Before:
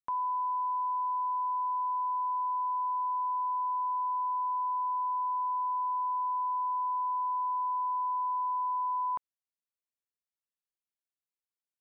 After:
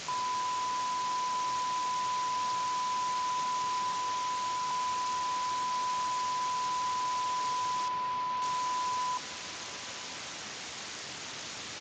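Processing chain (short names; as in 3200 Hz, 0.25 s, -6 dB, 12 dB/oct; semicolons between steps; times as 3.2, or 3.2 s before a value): 3.92–4.71 HPF 1000 Hz 12 dB/oct; 5.81–6.55 upward compressor, threshold -35 dBFS; limiter -30.5 dBFS, peak gain reduction 4.5 dB; requantised 6-bit, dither triangular; 7.88–8.42 air absorption 180 m; feedback echo 1.003 s, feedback 39%, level -24 dB; downsampling 16000 Hz; Speex 36 kbps 32000 Hz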